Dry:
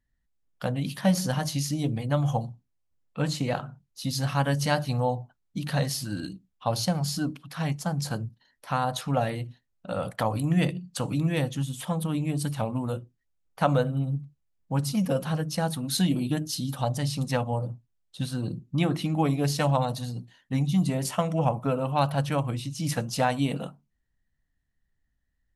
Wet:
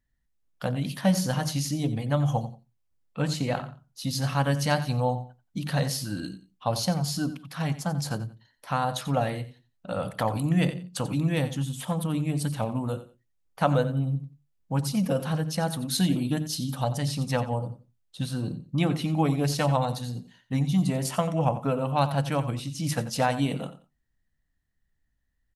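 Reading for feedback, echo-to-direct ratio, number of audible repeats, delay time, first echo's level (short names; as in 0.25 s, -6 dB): 22%, -14.0 dB, 2, 89 ms, -14.0 dB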